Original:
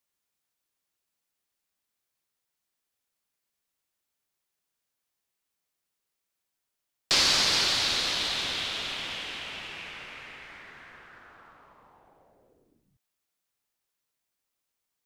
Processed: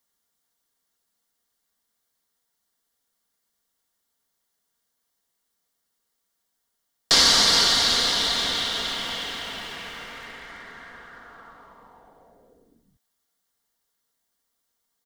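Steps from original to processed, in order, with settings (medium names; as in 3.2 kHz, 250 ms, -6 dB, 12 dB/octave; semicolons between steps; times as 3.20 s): peaking EQ 2.5 kHz -14.5 dB 0.21 oct; comb 4.3 ms, depth 42%; bit-crushed delay 363 ms, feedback 35%, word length 7-bit, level -14.5 dB; trim +6 dB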